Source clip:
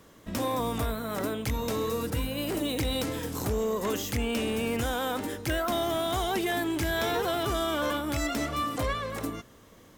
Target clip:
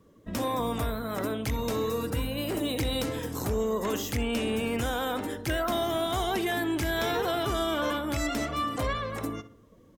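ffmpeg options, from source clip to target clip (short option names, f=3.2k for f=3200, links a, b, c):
-filter_complex "[0:a]afftdn=nr=14:nf=-50,asplit=2[a][b];[b]adelay=64,lowpass=f=2.6k:p=1,volume=-13.5dB,asplit=2[c][d];[d]adelay=64,lowpass=f=2.6k:p=1,volume=0.44,asplit=2[e][f];[f]adelay=64,lowpass=f=2.6k:p=1,volume=0.44,asplit=2[g][h];[h]adelay=64,lowpass=f=2.6k:p=1,volume=0.44[i];[c][e][g][i]amix=inputs=4:normalize=0[j];[a][j]amix=inputs=2:normalize=0"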